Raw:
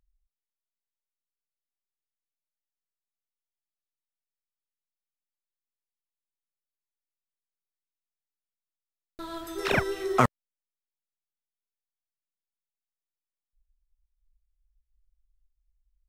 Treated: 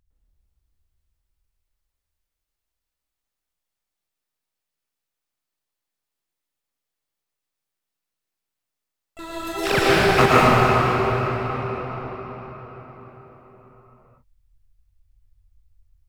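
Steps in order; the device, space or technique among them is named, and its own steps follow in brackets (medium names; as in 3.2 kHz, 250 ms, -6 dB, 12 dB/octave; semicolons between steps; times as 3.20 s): shimmer-style reverb (harmony voices +12 st -7 dB; reverberation RT60 5.2 s, pre-delay 103 ms, DRR -8 dB); trim +2.5 dB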